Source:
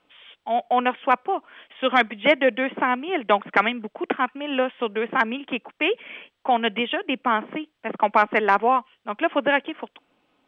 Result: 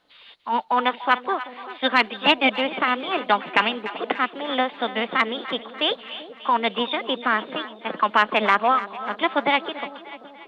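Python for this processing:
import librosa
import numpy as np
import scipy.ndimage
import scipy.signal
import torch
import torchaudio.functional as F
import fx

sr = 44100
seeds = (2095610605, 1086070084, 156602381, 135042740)

y = fx.formant_shift(x, sr, semitones=4)
y = fx.echo_split(y, sr, split_hz=690.0, low_ms=386, high_ms=293, feedback_pct=52, wet_db=-14)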